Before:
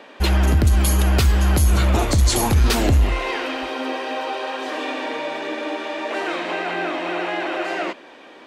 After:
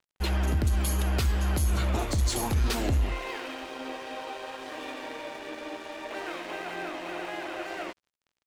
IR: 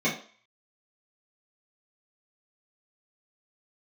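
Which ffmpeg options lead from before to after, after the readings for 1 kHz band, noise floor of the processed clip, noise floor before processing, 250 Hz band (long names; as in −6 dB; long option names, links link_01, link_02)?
−10.5 dB, −84 dBFS, −44 dBFS, −10.0 dB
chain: -af "aeval=exprs='sgn(val(0))*max(abs(val(0))-0.0168,0)':channel_layout=same,volume=-9dB"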